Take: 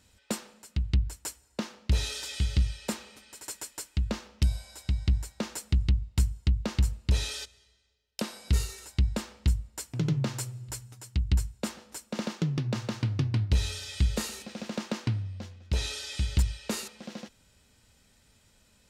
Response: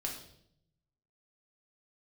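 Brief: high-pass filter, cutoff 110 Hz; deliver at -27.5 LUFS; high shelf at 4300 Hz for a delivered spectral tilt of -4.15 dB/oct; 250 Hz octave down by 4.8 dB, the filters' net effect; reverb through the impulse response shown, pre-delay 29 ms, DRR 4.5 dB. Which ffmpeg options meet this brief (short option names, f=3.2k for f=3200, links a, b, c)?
-filter_complex "[0:a]highpass=110,equalizer=f=250:t=o:g=-6.5,highshelf=f=4.3k:g=3.5,asplit=2[a][b];[1:a]atrim=start_sample=2205,adelay=29[c];[b][c]afir=irnorm=-1:irlink=0,volume=-5.5dB[d];[a][d]amix=inputs=2:normalize=0,volume=6.5dB"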